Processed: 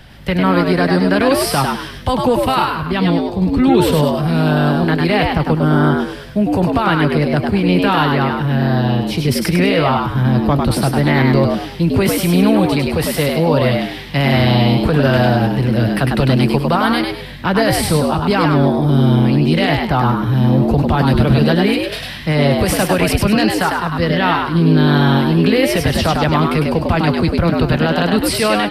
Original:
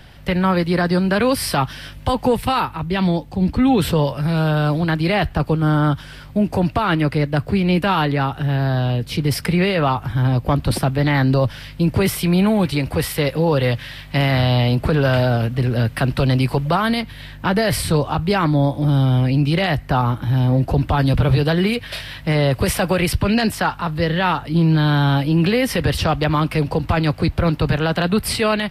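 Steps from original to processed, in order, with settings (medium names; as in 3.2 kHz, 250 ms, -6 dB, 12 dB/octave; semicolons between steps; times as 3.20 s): frequency-shifting echo 101 ms, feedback 33%, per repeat +91 Hz, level -3.5 dB; trim +2 dB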